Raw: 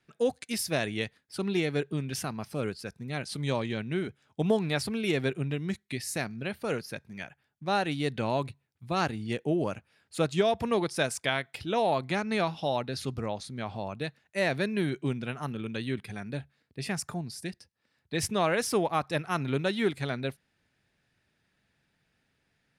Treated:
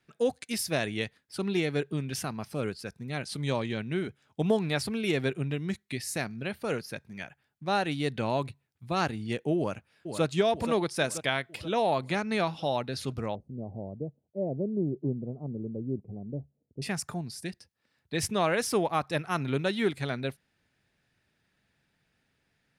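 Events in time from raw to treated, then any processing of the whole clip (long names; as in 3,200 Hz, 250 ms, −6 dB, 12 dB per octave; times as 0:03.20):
0:09.57–0:10.24: delay throw 480 ms, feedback 55%, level −8 dB
0:13.35–0:16.82: inverse Chebyshev low-pass filter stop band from 1,500 Hz, stop band 50 dB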